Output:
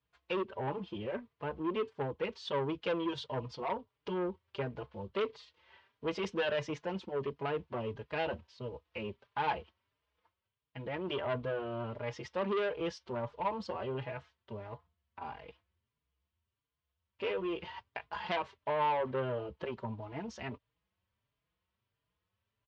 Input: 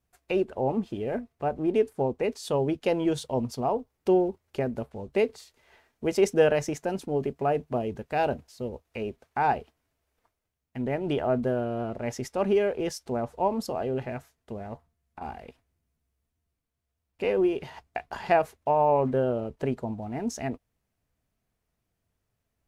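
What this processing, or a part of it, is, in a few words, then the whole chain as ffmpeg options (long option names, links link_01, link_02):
barber-pole flanger into a guitar amplifier: -filter_complex "[0:a]asplit=2[link_01][link_02];[link_02]adelay=4.5,afreqshift=1.5[link_03];[link_01][link_03]amix=inputs=2:normalize=1,asoftclip=type=tanh:threshold=-25dB,highpass=76,equalizer=frequency=150:width_type=q:width=4:gain=-5,equalizer=frequency=250:width_type=q:width=4:gain=-10,equalizer=frequency=380:width_type=q:width=4:gain=-4,equalizer=frequency=730:width_type=q:width=4:gain=-9,equalizer=frequency=1000:width_type=q:width=4:gain=7,equalizer=frequency=3100:width_type=q:width=4:gain=6,lowpass=frequency=4500:width=0.5412,lowpass=frequency=4500:width=1.3066"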